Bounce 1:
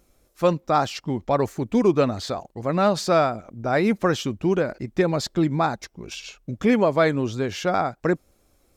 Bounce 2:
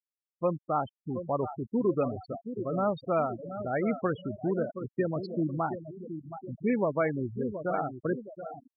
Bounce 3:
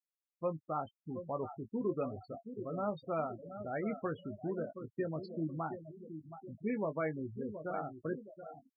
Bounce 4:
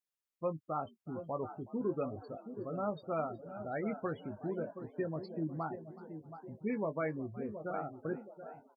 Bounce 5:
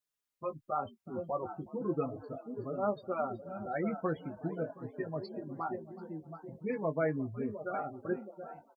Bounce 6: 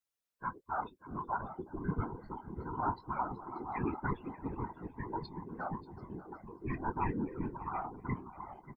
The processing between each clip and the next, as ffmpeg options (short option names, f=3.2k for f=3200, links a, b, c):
-filter_complex "[0:a]asplit=2[a][b];[b]aecho=0:1:723|1446|2169|2892|3615|4338:0.335|0.174|0.0906|0.0471|0.0245|0.0127[c];[a][c]amix=inputs=2:normalize=0,afftfilt=real='re*gte(hypot(re,im),0.141)':imag='im*gte(hypot(re,im),0.141)':win_size=1024:overlap=0.75,volume=-8.5dB"
-filter_complex "[0:a]asplit=2[a][b];[b]adelay=19,volume=-9.5dB[c];[a][c]amix=inputs=2:normalize=0,volume=-8.5dB"
-filter_complex "[0:a]asplit=6[a][b][c][d][e][f];[b]adelay=370,afreqshift=74,volume=-20dB[g];[c]adelay=740,afreqshift=148,volume=-24.2dB[h];[d]adelay=1110,afreqshift=222,volume=-28.3dB[i];[e]adelay=1480,afreqshift=296,volume=-32.5dB[j];[f]adelay=1850,afreqshift=370,volume=-36.6dB[k];[a][g][h][i][j][k]amix=inputs=6:normalize=0"
-filter_complex "[0:a]asplit=2[a][b];[b]adelay=4.3,afreqshift=-0.42[c];[a][c]amix=inputs=2:normalize=1,volume=5.5dB"
-af "afftfilt=real='real(if(between(b,1,1008),(2*floor((b-1)/24)+1)*24-b,b),0)':imag='imag(if(between(b,1,1008),(2*floor((b-1)/24)+1)*24-b,b),0)*if(between(b,1,1008),-1,1)':win_size=2048:overlap=0.75,aecho=1:1:586:0.15,afftfilt=real='hypot(re,im)*cos(2*PI*random(0))':imag='hypot(re,im)*sin(2*PI*random(1))':win_size=512:overlap=0.75,volume=4dB"